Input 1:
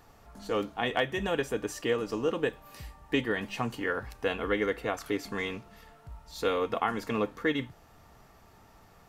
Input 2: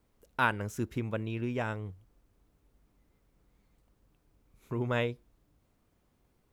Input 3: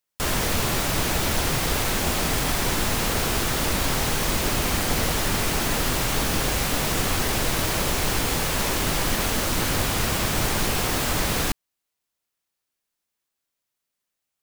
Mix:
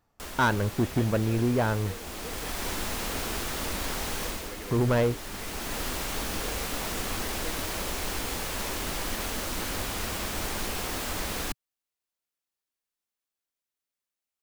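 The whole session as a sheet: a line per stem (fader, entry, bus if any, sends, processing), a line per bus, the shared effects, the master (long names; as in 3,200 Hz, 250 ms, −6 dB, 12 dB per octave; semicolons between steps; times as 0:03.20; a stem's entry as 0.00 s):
−16.0 dB, 0.00 s, no send, no processing
−1.0 dB, 0.00 s, no send, low-pass filter 1,500 Hz; leveller curve on the samples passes 3
−8.0 dB, 0.00 s, no send, parametric band 130 Hz −14 dB 0.38 octaves; automatic ducking −8 dB, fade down 0.30 s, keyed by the second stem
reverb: not used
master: no processing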